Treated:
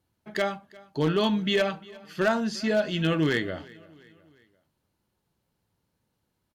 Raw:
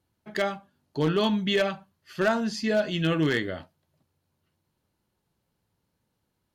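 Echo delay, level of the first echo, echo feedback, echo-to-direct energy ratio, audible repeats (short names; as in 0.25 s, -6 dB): 0.351 s, -23.0 dB, 50%, -22.0 dB, 2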